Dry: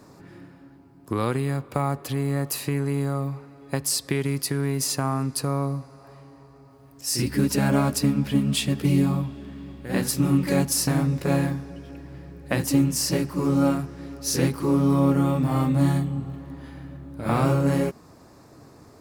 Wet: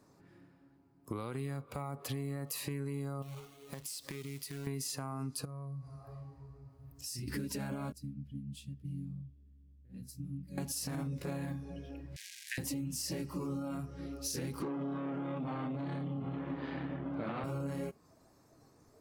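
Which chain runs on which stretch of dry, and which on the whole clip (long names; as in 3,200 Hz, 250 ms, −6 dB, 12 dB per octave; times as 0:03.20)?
0:03.22–0:04.67: downward compressor 12 to 1, threshold −34 dBFS + log-companded quantiser 4 bits
0:05.45–0:07.28: parametric band 80 Hz +11.5 dB 1.9 octaves + downward compressor, threshold −34 dBFS
0:07.92–0:10.58: guitar amp tone stack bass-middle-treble 10-0-1 + one half of a high-frequency compander decoder only
0:12.16–0:12.58: spike at every zero crossing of −20 dBFS + Chebyshev high-pass filter 1,600 Hz, order 6 + high-frequency loss of the air 53 metres
0:14.62–0:17.44: leveller curve on the samples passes 3 + band-pass filter 180–3,600 Hz
whole clip: brickwall limiter −18 dBFS; downward compressor 6 to 1, threshold −30 dBFS; noise reduction from a noise print of the clip's start 10 dB; level −5 dB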